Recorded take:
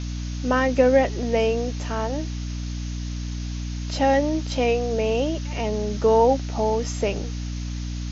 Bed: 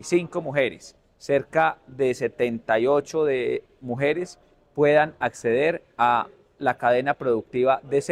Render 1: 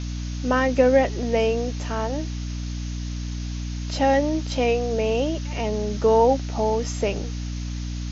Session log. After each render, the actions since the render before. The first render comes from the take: no audible change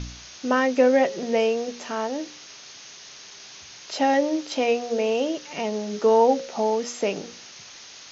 de-hum 60 Hz, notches 9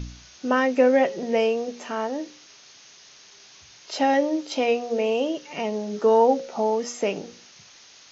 noise print and reduce 6 dB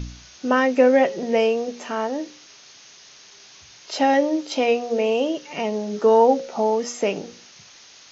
trim +2.5 dB

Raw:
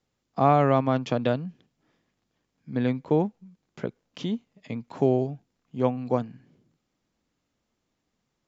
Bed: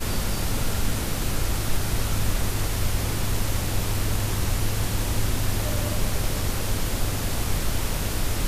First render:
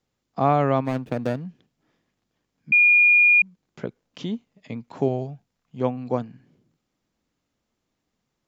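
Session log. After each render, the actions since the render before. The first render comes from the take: 0.85–1.47 s: median filter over 41 samples; 2.72–3.42 s: bleep 2.43 kHz -12 dBFS; 5.08–5.81 s: peaking EQ 320 Hz -9 dB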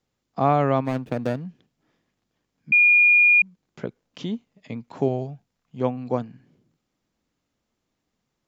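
no audible change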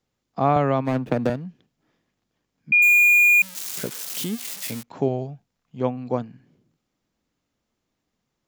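0.56–1.30 s: three bands compressed up and down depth 100%; 2.82–4.83 s: zero-crossing glitches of -20 dBFS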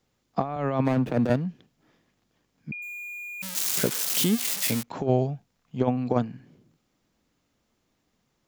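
compressor with a negative ratio -24 dBFS, ratio -0.5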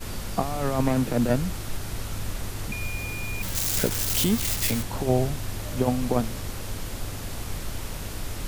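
add bed -7.5 dB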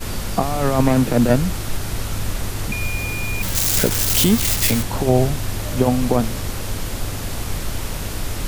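trim +7.5 dB; peak limiter -3 dBFS, peak gain reduction 2.5 dB

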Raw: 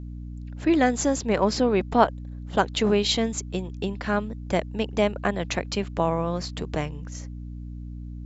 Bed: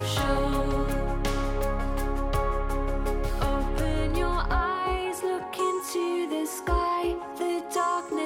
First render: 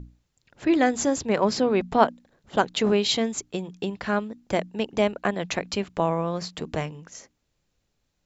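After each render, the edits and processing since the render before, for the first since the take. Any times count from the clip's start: hum notches 60/120/180/240/300 Hz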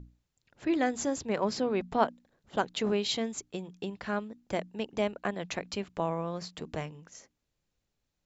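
trim -7.5 dB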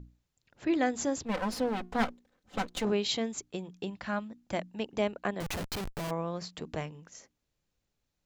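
1.25–2.85 s: comb filter that takes the minimum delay 3.9 ms; 3.87–4.80 s: peaking EQ 430 Hz -15 dB 0.21 oct; 5.40–6.11 s: Schmitt trigger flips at -46 dBFS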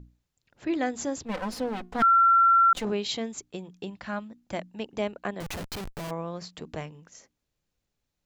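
2.02–2.73 s: bleep 1.36 kHz -15.5 dBFS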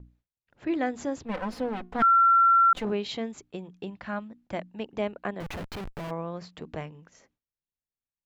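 tone controls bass 0 dB, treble -11 dB; gate with hold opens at -57 dBFS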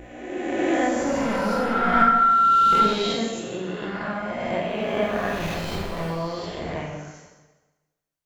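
reverse spectral sustain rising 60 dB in 1.91 s; plate-style reverb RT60 1.2 s, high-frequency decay 0.9×, DRR -2 dB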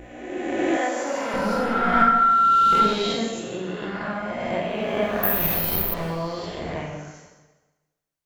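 0.77–1.34 s: high-pass 430 Hz; 5.23–5.94 s: careless resampling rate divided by 3×, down filtered, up zero stuff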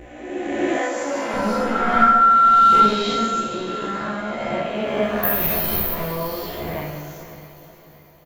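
doubling 14 ms -4 dB; on a send: echo that smears into a reverb 540 ms, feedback 44%, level -12.5 dB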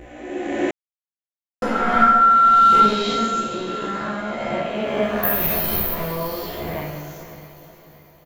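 0.71–1.62 s: mute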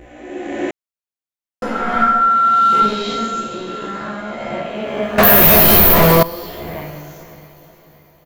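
2.27–2.82 s: high-pass 93 Hz 24 dB/octave; 5.18–6.23 s: waveshaping leveller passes 5

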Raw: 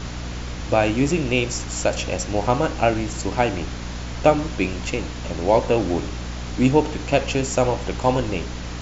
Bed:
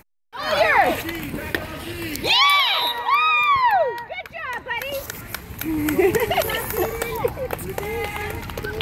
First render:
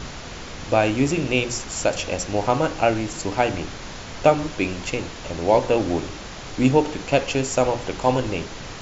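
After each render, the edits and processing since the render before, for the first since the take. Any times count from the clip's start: hum notches 60/120/180/240/300/360 Hz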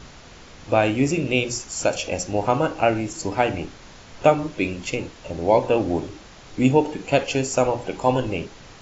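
noise print and reduce 9 dB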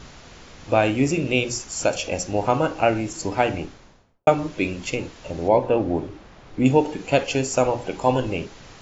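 3.52–4.27 s: studio fade out; 5.48–6.66 s: low-pass 1.7 kHz 6 dB/octave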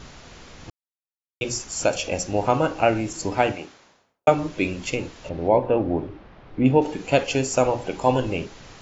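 0.70–1.41 s: mute; 3.52–4.28 s: high-pass 550 Hz 6 dB/octave; 5.29–6.82 s: distance through air 230 m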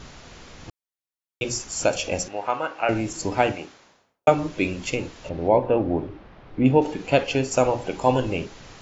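2.28–2.89 s: band-pass filter 1.6 kHz, Q 0.81; 6.93–7.50 s: low-pass 6.8 kHz -> 4.3 kHz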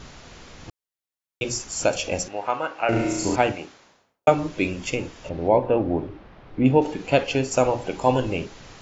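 2.89–3.36 s: flutter echo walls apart 5.9 m, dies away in 0.93 s; 4.69–5.32 s: band-stop 4.1 kHz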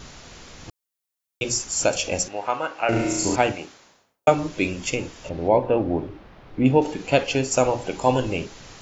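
treble shelf 5.9 kHz +8.5 dB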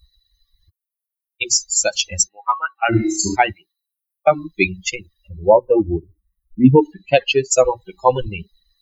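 expander on every frequency bin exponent 3; loudness maximiser +13.5 dB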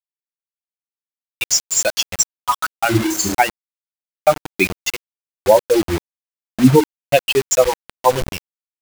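bit crusher 4-bit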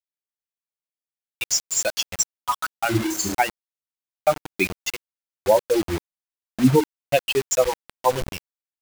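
trim -5.5 dB

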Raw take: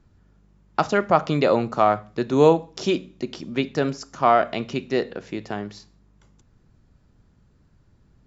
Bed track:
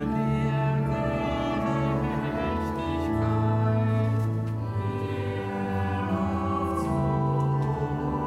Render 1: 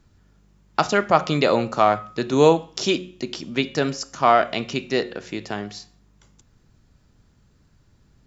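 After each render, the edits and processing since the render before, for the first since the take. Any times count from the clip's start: treble shelf 2.2 kHz +8.5 dB; de-hum 180.8 Hz, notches 19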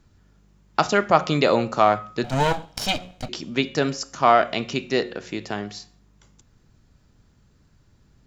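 2.24–3.29 s: comb filter that takes the minimum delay 1.3 ms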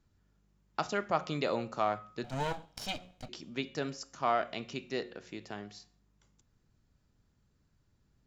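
trim -13.5 dB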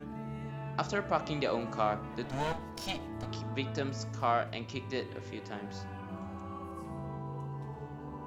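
add bed track -15.5 dB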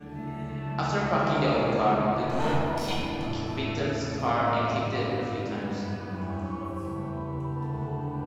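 delay 693 ms -22 dB; simulated room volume 150 m³, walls hard, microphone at 0.9 m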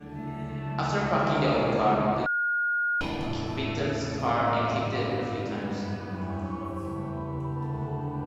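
2.26–3.01 s: bleep 1.43 kHz -23.5 dBFS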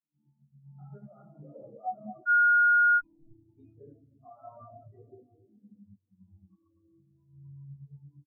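peak limiter -18 dBFS, peak gain reduction 7 dB; spectral contrast expander 4:1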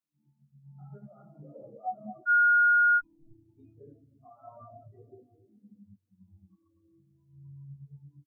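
2.72–4.48 s: dynamic bell 620 Hz, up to -5 dB, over -56 dBFS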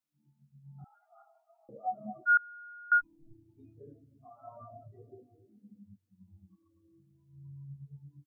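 0.84–1.69 s: brick-wall FIR high-pass 650 Hz; 2.37–2.92 s: vowel filter u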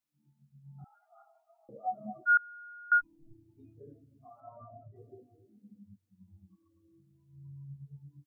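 4.40–4.96 s: distance through air 420 m

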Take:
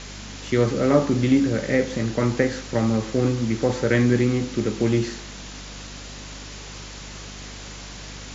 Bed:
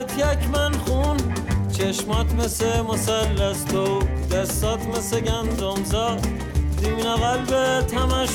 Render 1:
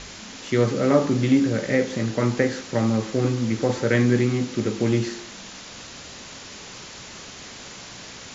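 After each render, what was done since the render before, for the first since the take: de-hum 50 Hz, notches 10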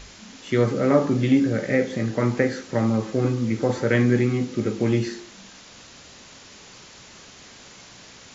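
noise print and reduce 6 dB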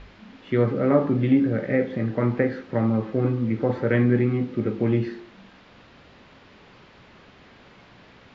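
distance through air 380 m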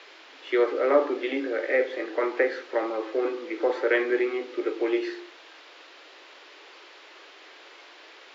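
steep high-pass 310 Hz 72 dB/octave; treble shelf 2.1 kHz +9 dB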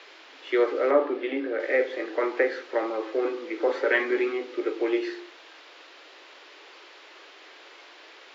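0.91–1.60 s: distance through air 200 m; 3.67–4.32 s: comb 7.3 ms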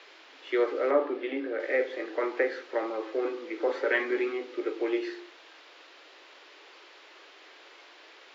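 trim -3.5 dB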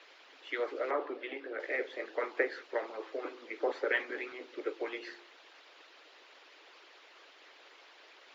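harmonic-percussive split harmonic -17 dB; dynamic bell 250 Hz, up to -4 dB, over -50 dBFS, Q 2.2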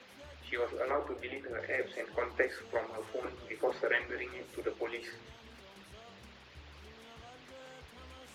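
add bed -33 dB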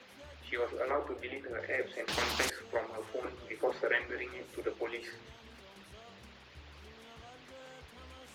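2.08–2.50 s: spectrum-flattening compressor 4:1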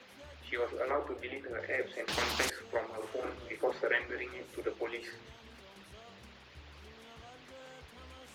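2.96–3.56 s: doubling 44 ms -4 dB

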